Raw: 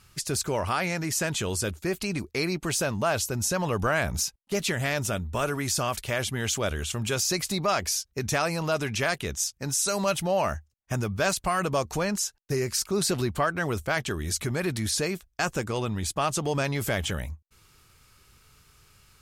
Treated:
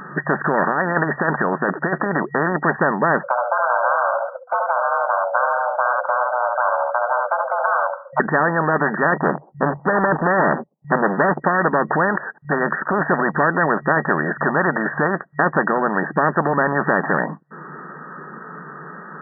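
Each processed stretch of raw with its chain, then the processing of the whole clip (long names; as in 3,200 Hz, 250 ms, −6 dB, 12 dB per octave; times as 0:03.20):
0:00.67–0:02.06: one scale factor per block 7 bits + compressor whose output falls as the input rises −31 dBFS, ratio −0.5
0:03.23–0:08.20: linear-phase brick-wall low-pass 1,100 Hz + frequency shifter +490 Hz + single-tap delay 71 ms −6.5 dB
0:09.16–0:11.42: Butterworth low-pass 910 Hz 48 dB per octave + leveller curve on the samples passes 3
whole clip: brick-wall band-pass 150–1,900 Hz; dynamic equaliser 570 Hz, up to +6 dB, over −44 dBFS, Q 6.2; every bin compressed towards the loudest bin 4 to 1; level +8.5 dB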